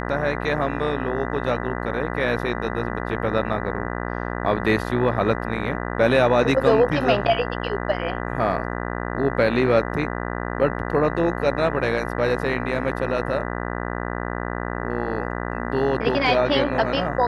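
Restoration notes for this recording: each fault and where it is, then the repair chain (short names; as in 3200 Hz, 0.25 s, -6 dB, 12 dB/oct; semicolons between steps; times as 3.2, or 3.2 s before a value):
buzz 60 Hz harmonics 33 -28 dBFS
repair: de-hum 60 Hz, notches 33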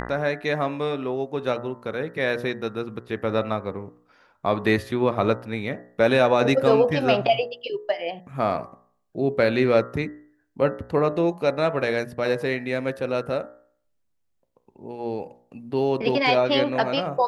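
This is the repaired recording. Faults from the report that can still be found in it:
none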